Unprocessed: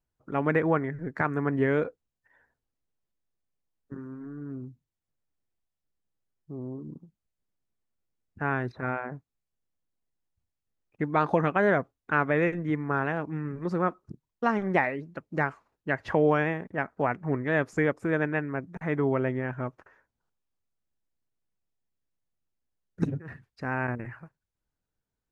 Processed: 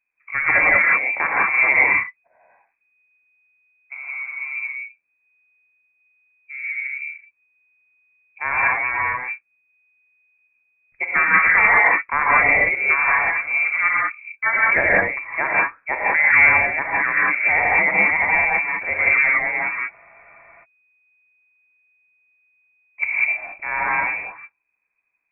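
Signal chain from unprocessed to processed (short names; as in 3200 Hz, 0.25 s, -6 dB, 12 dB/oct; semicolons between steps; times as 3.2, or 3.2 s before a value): non-linear reverb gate 0.22 s rising, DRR -5 dB; inverted band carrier 2500 Hz; spectral freeze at 19.93, 0.70 s; gain +3.5 dB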